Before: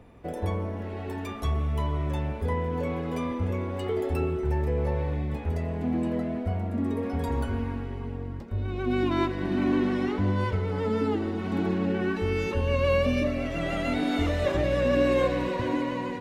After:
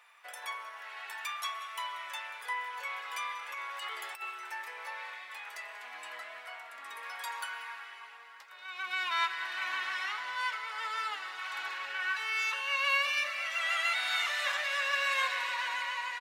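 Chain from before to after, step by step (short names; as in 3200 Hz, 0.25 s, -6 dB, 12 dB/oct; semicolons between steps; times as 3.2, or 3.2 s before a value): HPF 1200 Hz 24 dB/oct; 3.47–4.22 negative-ratio compressor -45 dBFS, ratio -0.5; echo 0.187 s -17 dB; gain +5.5 dB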